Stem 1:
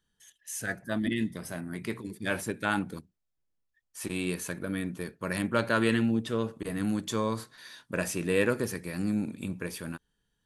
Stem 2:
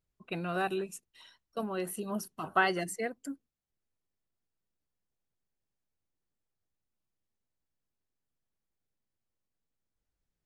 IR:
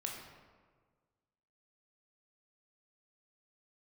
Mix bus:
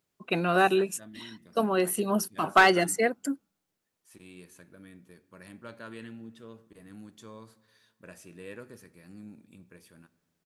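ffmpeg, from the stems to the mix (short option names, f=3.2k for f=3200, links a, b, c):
-filter_complex "[0:a]adelay=100,volume=-19dB,asplit=2[a][b];[b]volume=-13.5dB[c];[1:a]acontrast=89,highpass=180,volume=2.5dB[d];[2:a]atrim=start_sample=2205[e];[c][e]afir=irnorm=-1:irlink=0[f];[a][d][f]amix=inputs=3:normalize=0,asoftclip=type=hard:threshold=-11.5dB"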